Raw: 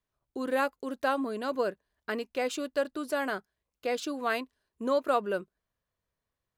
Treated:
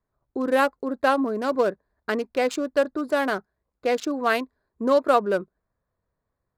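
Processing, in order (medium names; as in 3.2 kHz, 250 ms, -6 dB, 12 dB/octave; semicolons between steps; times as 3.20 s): local Wiener filter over 15 samples; trim +8 dB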